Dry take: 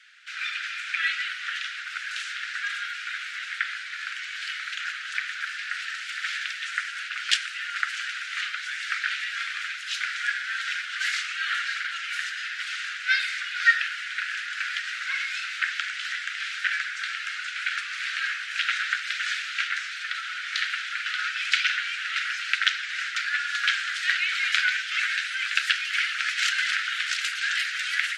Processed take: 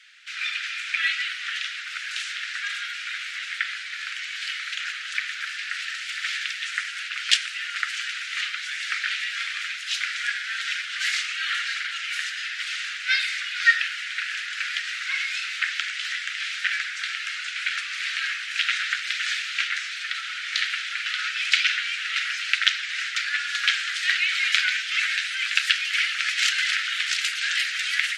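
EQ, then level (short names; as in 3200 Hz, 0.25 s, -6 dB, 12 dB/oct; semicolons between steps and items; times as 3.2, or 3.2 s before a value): HPF 1100 Hz 12 dB/oct; bell 1500 Hz -6 dB 0.45 oct; +4.0 dB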